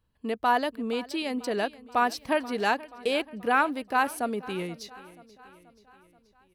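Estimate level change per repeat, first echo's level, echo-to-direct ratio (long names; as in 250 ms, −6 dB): −5.0 dB, −19.5 dB, −18.0 dB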